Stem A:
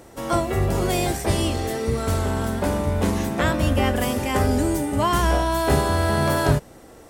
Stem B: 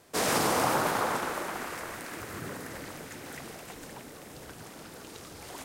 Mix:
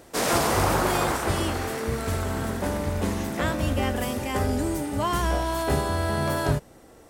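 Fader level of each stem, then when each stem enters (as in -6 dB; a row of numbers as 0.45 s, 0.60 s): -5.0 dB, +2.5 dB; 0.00 s, 0.00 s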